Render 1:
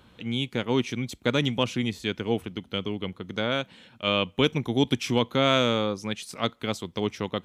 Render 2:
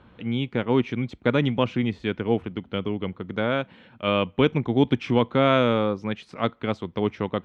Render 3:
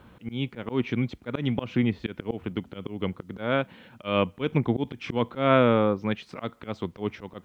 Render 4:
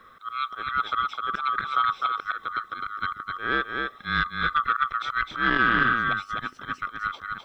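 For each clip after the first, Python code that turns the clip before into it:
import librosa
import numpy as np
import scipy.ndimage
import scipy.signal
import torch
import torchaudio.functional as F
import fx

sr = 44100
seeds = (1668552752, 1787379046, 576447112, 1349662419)

y1 = scipy.signal.sosfilt(scipy.signal.butter(2, 2100.0, 'lowpass', fs=sr, output='sos'), x)
y1 = F.gain(torch.from_numpy(y1), 3.5).numpy()
y2 = fx.auto_swell(y1, sr, attack_ms=173.0)
y2 = fx.env_lowpass_down(y2, sr, base_hz=2600.0, full_db=-19.0)
y2 = fx.quant_dither(y2, sr, seeds[0], bits=12, dither='none')
y2 = F.gain(torch.from_numpy(y2), 1.0).numpy()
y3 = fx.band_swap(y2, sr, width_hz=1000)
y3 = y3 + 10.0 ** (-4.5 / 20.0) * np.pad(y3, (int(257 * sr / 1000.0), 0))[:len(y3)]
y3 = fx.transformer_sat(y3, sr, knee_hz=590.0)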